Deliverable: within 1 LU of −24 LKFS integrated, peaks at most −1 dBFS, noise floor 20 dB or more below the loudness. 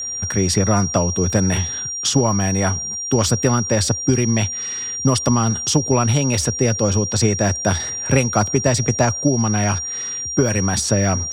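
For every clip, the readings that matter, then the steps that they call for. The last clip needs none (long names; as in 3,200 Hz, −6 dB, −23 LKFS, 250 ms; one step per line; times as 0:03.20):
interfering tone 5,700 Hz; level of the tone −24 dBFS; integrated loudness −18.5 LKFS; sample peak −3.5 dBFS; target loudness −24.0 LKFS
→ notch filter 5,700 Hz, Q 30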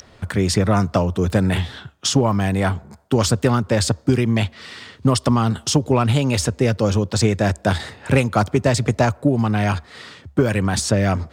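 interfering tone none found; integrated loudness −19.5 LKFS; sample peak −4.0 dBFS; target loudness −24.0 LKFS
→ level −4.5 dB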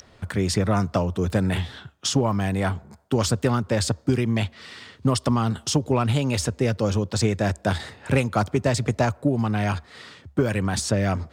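integrated loudness −24.0 LKFS; sample peak −8.5 dBFS; background noise floor −53 dBFS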